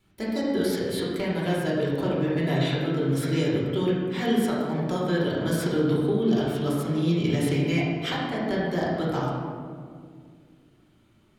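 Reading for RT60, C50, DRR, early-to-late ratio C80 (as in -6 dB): 2.0 s, -0.5 dB, -6.5 dB, 1.5 dB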